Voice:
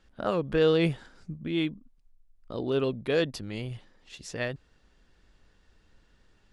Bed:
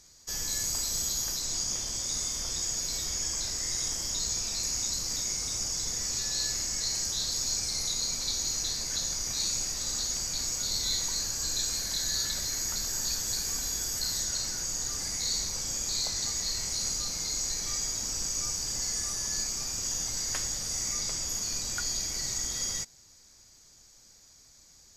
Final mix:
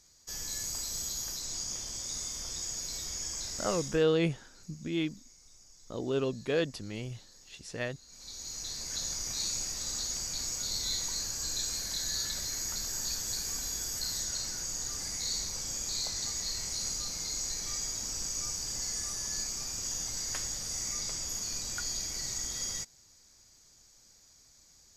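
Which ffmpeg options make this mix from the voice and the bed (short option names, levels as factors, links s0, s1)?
-filter_complex "[0:a]adelay=3400,volume=0.668[s0];[1:a]volume=7.5,afade=t=out:st=3.7:d=0.35:silence=0.0891251,afade=t=in:st=8.06:d=1.02:silence=0.0707946[s1];[s0][s1]amix=inputs=2:normalize=0"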